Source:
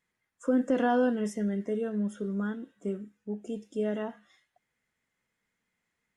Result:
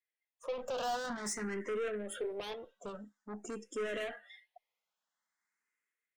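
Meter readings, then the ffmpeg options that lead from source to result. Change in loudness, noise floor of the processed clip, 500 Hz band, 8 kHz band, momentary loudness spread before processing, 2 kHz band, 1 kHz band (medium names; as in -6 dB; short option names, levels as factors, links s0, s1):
-8.5 dB, under -85 dBFS, -6.5 dB, no reading, 12 LU, -2.5 dB, -5.5 dB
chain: -filter_complex "[0:a]highpass=600,afftdn=nr=15:nf=-61,dynaudnorm=f=300:g=5:m=2.99,aeval=exprs='(tanh(56.2*val(0)+0.1)-tanh(0.1))/56.2':c=same,asplit=2[s0][s1];[s1]afreqshift=0.48[s2];[s0][s2]amix=inputs=2:normalize=1,volume=1.5"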